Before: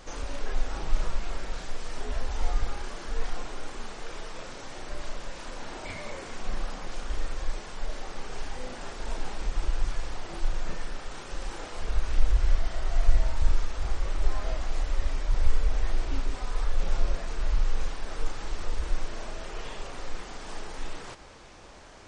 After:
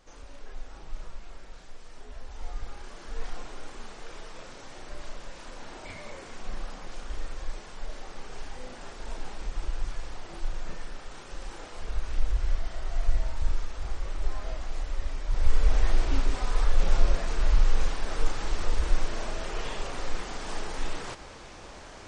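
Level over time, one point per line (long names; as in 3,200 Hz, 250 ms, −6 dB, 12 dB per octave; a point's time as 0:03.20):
0:02.15 −12 dB
0:03.27 −4 dB
0:15.22 −4 dB
0:15.69 +4 dB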